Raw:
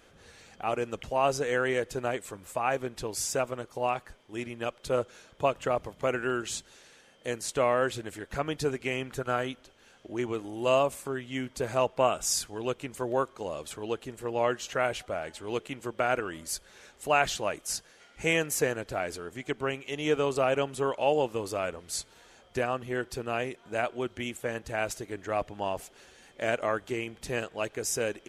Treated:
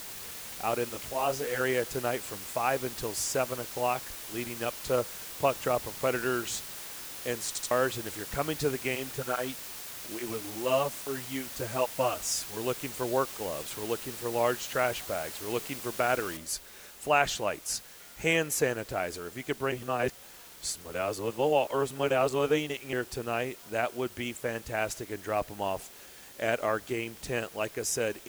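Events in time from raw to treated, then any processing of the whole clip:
0.89–1.61 detuned doubles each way 38 cents
7.47 stutter in place 0.08 s, 3 plays
8.95–12.57 tape flanging out of phase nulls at 1.2 Hz, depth 7.7 ms
16.37 noise floor step -42 dB -51 dB
19.72–22.93 reverse

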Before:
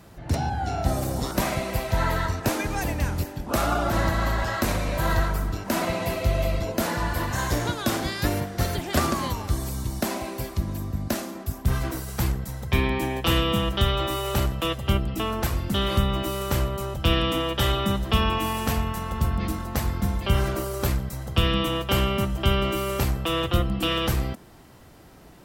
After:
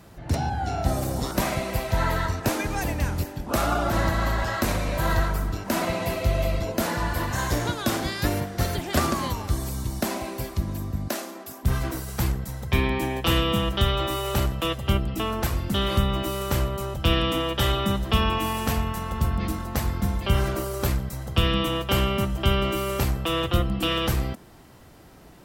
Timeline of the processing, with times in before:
11.09–11.63 HPF 330 Hz

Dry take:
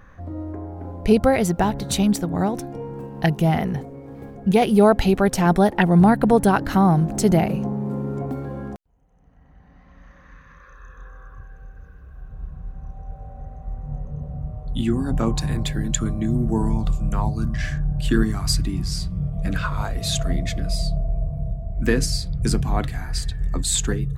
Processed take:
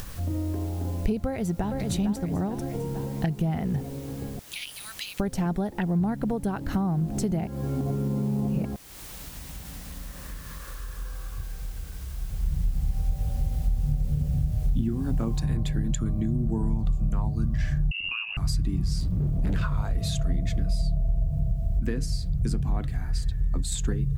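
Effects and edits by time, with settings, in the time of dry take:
1.26–1.78 echo throw 0.45 s, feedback 45%, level -8 dB
4.39–5.2 inverse Chebyshev high-pass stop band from 420 Hz, stop band 80 dB
7.47–8.65 reverse
12.45–14.89 tilt shelf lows +6 dB, about 770 Hz
15.4 noise floor step -47 dB -61 dB
17.91–18.37 inverted band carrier 2800 Hz
19–19.62 hard clip -24.5 dBFS
21.8–23.72 gain -4.5 dB
whole clip: compressor 6:1, threshold -26 dBFS; low shelf 300 Hz +10 dB; upward compressor, threshold -27 dBFS; gain -4 dB

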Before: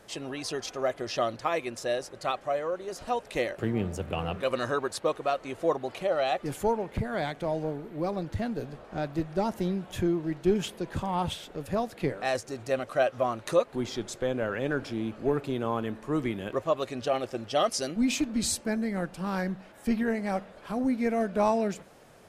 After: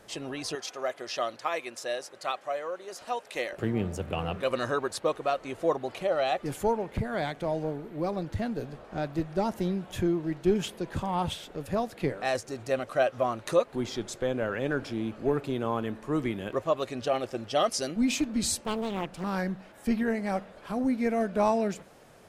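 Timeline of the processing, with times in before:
0.55–3.53 HPF 650 Hz 6 dB/oct
18.6–19.24 Doppler distortion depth 0.88 ms

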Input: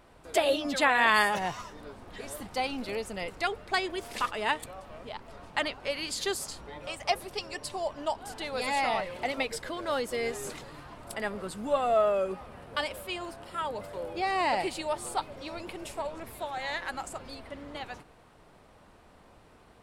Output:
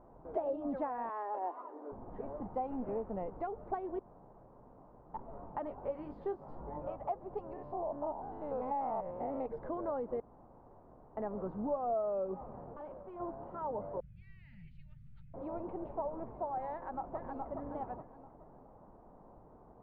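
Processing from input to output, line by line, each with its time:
1.09–1.92 steep high-pass 260 Hz 72 dB/oct
2.7–3.11 CVSD 16 kbps
3.99–5.14 room tone
5.65–6.96 doubler 20 ms -6 dB
7.53–9.46 stepped spectrum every 0.1 s
10.2–11.17 room tone
12.72–13.2 tube stage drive 41 dB, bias 0.8
14–15.34 inverse Chebyshev band-stop 310–1100 Hz, stop band 50 dB
16.72–17.51 echo throw 0.42 s, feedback 35%, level -4.5 dB
whole clip: compressor 4:1, threshold -33 dBFS; Chebyshev low-pass 920 Hz, order 3; bell 78 Hz -12.5 dB 0.37 oct; gain +1 dB

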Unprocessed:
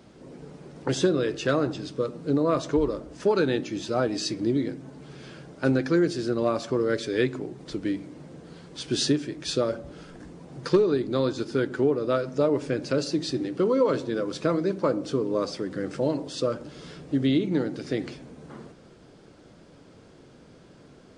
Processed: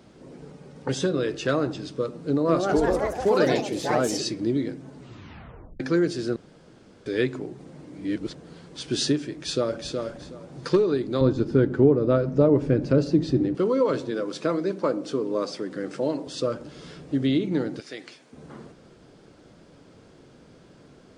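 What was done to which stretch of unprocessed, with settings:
0.52–1.14 notch comb 340 Hz
2.24–4.42 echoes that change speed 0.215 s, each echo +3 st, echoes 3
4.97 tape stop 0.83 s
6.36–7.06 room tone
7.66–8.35 reverse
9.34–9.93 echo throw 0.37 s, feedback 20%, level -5 dB
11.21–13.55 tilt -3.5 dB/oct
14.11–16.27 HPF 180 Hz
17.8–18.33 HPF 1400 Hz 6 dB/oct

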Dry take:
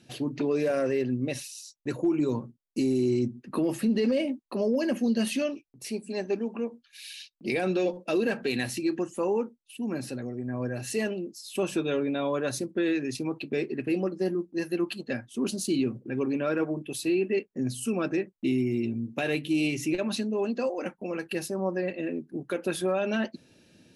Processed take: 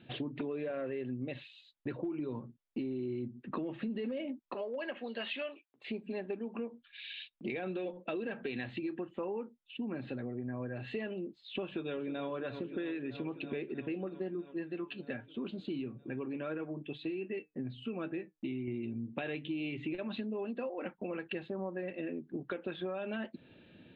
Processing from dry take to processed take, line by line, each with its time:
4.54–5.88 HPF 680 Hz
11.64–12.27 echo throw 0.32 s, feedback 80%, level -13 dB
14.53–18.68 flange 1.1 Hz, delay 5.8 ms, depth 1.4 ms, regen +73%
whole clip: elliptic low-pass 3600 Hz, stop band 40 dB; compressor 6:1, threshold -37 dBFS; gain +1.5 dB

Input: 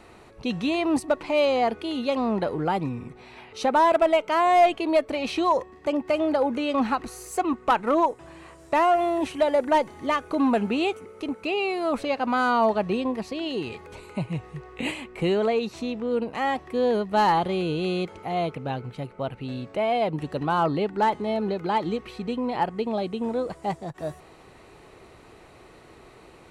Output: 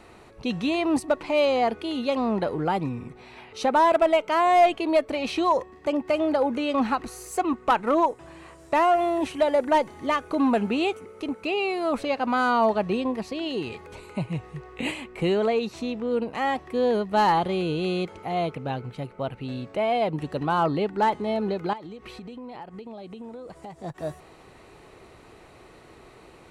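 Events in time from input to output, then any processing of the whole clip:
21.73–23.84 compressor 10:1, threshold -36 dBFS

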